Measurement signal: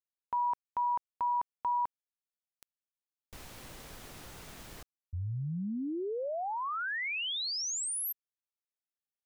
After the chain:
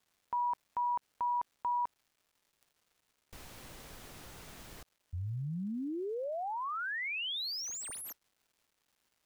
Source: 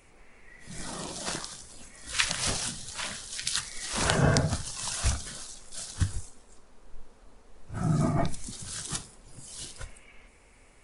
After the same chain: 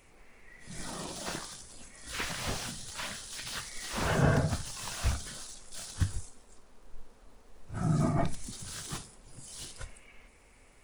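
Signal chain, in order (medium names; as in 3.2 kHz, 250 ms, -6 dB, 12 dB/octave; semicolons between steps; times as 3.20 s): crackle 580 per s -60 dBFS; slew-rate limiter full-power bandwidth 84 Hz; trim -2 dB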